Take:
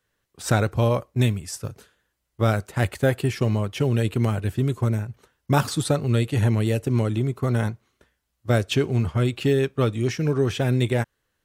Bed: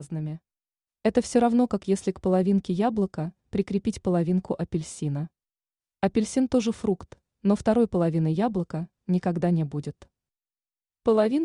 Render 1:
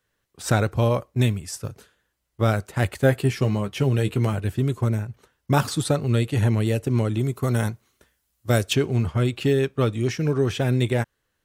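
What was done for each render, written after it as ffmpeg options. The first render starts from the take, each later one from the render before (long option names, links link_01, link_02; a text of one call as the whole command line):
ffmpeg -i in.wav -filter_complex "[0:a]asettb=1/sr,asplit=3[link_01][link_02][link_03];[link_01]atrim=end=3.014[link_04];[link_02]atrim=start=3.01:end=4.34,asetpts=PTS-STARTPTS,afade=type=in:duration=0.004:curve=qsin,afade=type=out:start_time=1.326:duration=0.004:curve=qsin,asplit=2[link_05][link_06];[link_06]adelay=15,volume=-9dB[link_07];[link_05][link_07]amix=inputs=2:normalize=0,atrim=end_sample=58653[link_08];[link_03]atrim=start=4.336[link_09];[link_04][link_08]acrossfade=duration=0.004:curve1=hsin:curve2=qsin[link_10];[link_10][link_09]acrossfade=duration=0.004:curve1=qsin:curve2=hsin,asettb=1/sr,asplit=3[link_11][link_12][link_13];[link_11]atrim=end=7.194[link_14];[link_12]atrim=start=7.19:end=8.73,asetpts=PTS-STARTPTS,afade=type=in:duration=0.004:curve=qsin,afade=type=out:start_time=1.536:duration=0.004:curve=qsin,highshelf=frequency=5900:gain=11.5[link_15];[link_13]atrim=start=8.726[link_16];[link_14][link_15]acrossfade=duration=0.004:curve1=hsin:curve2=qsin[link_17];[link_17][link_16]acrossfade=duration=0.004:curve1=qsin:curve2=hsin" out.wav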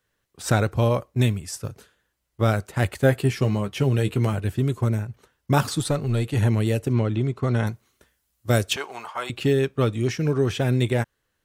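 ffmpeg -i in.wav -filter_complex "[0:a]asettb=1/sr,asplit=3[link_01][link_02][link_03];[link_01]atrim=end=5.794[link_04];[link_02]atrim=start=5.79:end=6.35,asetpts=PTS-STARTPTS,afade=type=in:duration=0.004:curve=qsin,afade=type=out:start_time=0.556:duration=0.004:curve=qsin,aeval=exprs='(tanh(4.47*val(0)+0.2)-tanh(0.2))/4.47':channel_layout=same[link_05];[link_03]atrim=start=6.346[link_06];[link_04][link_05]acrossfade=duration=0.004:curve1=hsin:curve2=qsin[link_07];[link_07][link_06]acrossfade=duration=0.004:curve1=qsin:curve2=hsin,asettb=1/sr,asplit=3[link_08][link_09][link_10];[link_08]atrim=end=6.934[link_11];[link_09]atrim=start=6.93:end=7.67,asetpts=PTS-STARTPTS,afade=type=in:duration=0.004:curve=qsin,afade=type=out:start_time=0.736:duration=0.004:curve=qsin,lowpass=4200[link_12];[link_10]atrim=start=7.666[link_13];[link_11][link_12]acrossfade=duration=0.004:curve1=hsin:curve2=qsin[link_14];[link_14][link_13]acrossfade=duration=0.004:curve1=qsin:curve2=hsin,asettb=1/sr,asplit=3[link_15][link_16][link_17];[link_15]atrim=end=8.764[link_18];[link_16]atrim=start=8.76:end=9.3,asetpts=PTS-STARTPTS,afade=type=in:duration=0.004:curve=qsin,afade=type=out:start_time=0.536:duration=0.004:curve=qsin,highpass=frequency=890:width_type=q:width=2.8[link_19];[link_17]atrim=start=9.296[link_20];[link_18][link_19]acrossfade=duration=0.004:curve1=hsin:curve2=qsin[link_21];[link_21][link_20]acrossfade=duration=0.004:curve1=qsin:curve2=hsin" out.wav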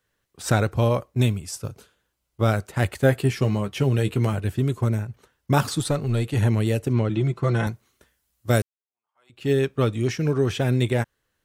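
ffmpeg -i in.wav -filter_complex "[0:a]asettb=1/sr,asplit=3[link_01][link_02][link_03];[link_01]atrim=end=1.174[link_04];[link_02]atrim=start=1.17:end=2.47,asetpts=PTS-STARTPTS,afade=type=in:duration=0.004:curve=qsin,afade=type=out:start_time=1.296:duration=0.004:curve=qsin,equalizer=frequency=1800:width_type=o:width=0.22:gain=-8[link_05];[link_03]atrim=start=2.466[link_06];[link_04][link_05]acrossfade=duration=0.004:curve1=hsin:curve2=qsin[link_07];[link_07][link_06]acrossfade=duration=0.004:curve1=qsin:curve2=hsin,asettb=1/sr,asplit=3[link_08][link_09][link_10];[link_08]atrim=end=7.094[link_11];[link_09]atrim=start=7.09:end=7.67,asetpts=PTS-STARTPTS,afade=type=in:duration=0.004:curve=qsin,afade=type=out:start_time=0.576:duration=0.004:curve=qsin,aecho=1:1:5.9:0.65,atrim=end_sample=25578[link_12];[link_10]atrim=start=7.666[link_13];[link_11][link_12]acrossfade=duration=0.004:curve1=hsin:curve2=qsin[link_14];[link_14][link_13]acrossfade=duration=0.004:curve1=qsin:curve2=hsin,asplit=2[link_15][link_16];[link_15]atrim=end=8.62,asetpts=PTS-STARTPTS,afade=type=out:start_time=8.616:duration=0.004:curve=hsin[link_17];[link_16]atrim=start=8.62,asetpts=PTS-STARTPTS,afade=type=in:duration=0.89:curve=exp[link_18];[link_17][link_18]concat=n=2:v=0:a=1" out.wav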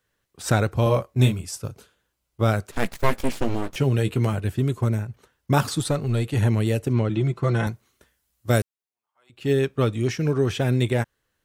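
ffmpeg -i in.wav -filter_complex "[0:a]asettb=1/sr,asplit=3[link_01][link_02][link_03];[link_01]atrim=end=0.844[link_04];[link_02]atrim=start=0.84:end=1.45,asetpts=PTS-STARTPTS,afade=type=in:duration=0.004:curve=qsin,afade=type=out:start_time=0.606:duration=0.004:curve=qsin,asplit=2[link_05][link_06];[link_06]adelay=23,volume=-4dB[link_07];[link_05][link_07]amix=inputs=2:normalize=0,atrim=end_sample=26901[link_08];[link_03]atrim=start=1.446[link_09];[link_04][link_08]acrossfade=duration=0.004:curve1=hsin:curve2=qsin[link_10];[link_10][link_09]acrossfade=duration=0.004:curve1=qsin:curve2=hsin,asettb=1/sr,asplit=3[link_11][link_12][link_13];[link_11]atrim=end=2.714[link_14];[link_12]atrim=start=2.71:end=3.76,asetpts=PTS-STARTPTS,afade=type=in:duration=0.004:curve=qsin,afade=type=out:start_time=1.046:duration=0.004:curve=qsin,aeval=exprs='abs(val(0))':channel_layout=same[link_15];[link_13]atrim=start=3.756[link_16];[link_14][link_15]acrossfade=duration=0.004:curve1=hsin:curve2=qsin[link_17];[link_17][link_16]acrossfade=duration=0.004:curve1=qsin:curve2=hsin" out.wav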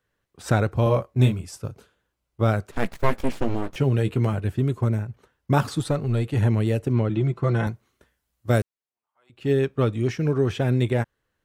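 ffmpeg -i in.wav -af "highshelf=frequency=3200:gain=-8.5" out.wav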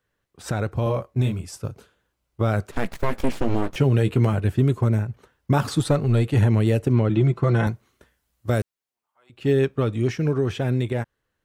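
ffmpeg -i in.wav -af "alimiter=limit=-13dB:level=0:latency=1:release=109,dynaudnorm=framelen=280:gausssize=13:maxgain=4dB" out.wav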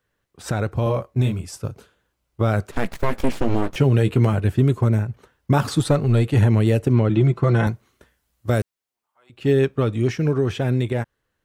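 ffmpeg -i in.wav -af "volume=2dB" out.wav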